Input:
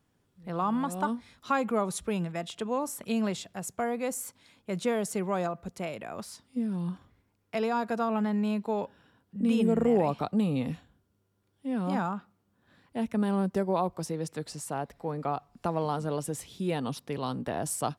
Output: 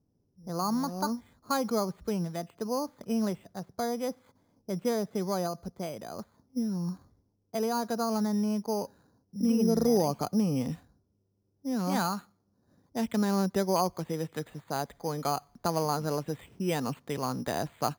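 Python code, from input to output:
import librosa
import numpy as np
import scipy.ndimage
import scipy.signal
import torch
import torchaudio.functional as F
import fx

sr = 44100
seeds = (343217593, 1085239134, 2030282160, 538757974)

y = fx.env_lowpass(x, sr, base_hz=520.0, full_db=-27.0)
y = fx.high_shelf(y, sr, hz=2100.0, db=fx.steps((0.0, -11.5), (10.2, -4.0), (11.78, 10.0)))
y = np.repeat(scipy.signal.resample_poly(y, 1, 8), 8)[:len(y)]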